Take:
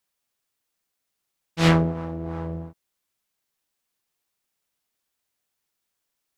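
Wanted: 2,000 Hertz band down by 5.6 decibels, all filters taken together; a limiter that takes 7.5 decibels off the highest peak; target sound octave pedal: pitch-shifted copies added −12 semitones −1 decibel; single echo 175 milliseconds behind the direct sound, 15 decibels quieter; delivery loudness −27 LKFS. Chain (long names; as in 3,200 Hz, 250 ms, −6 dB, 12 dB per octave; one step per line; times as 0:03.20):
parametric band 2,000 Hz −7 dB
brickwall limiter −15.5 dBFS
single-tap delay 175 ms −15 dB
pitch-shifted copies added −12 semitones −1 dB
level −0.5 dB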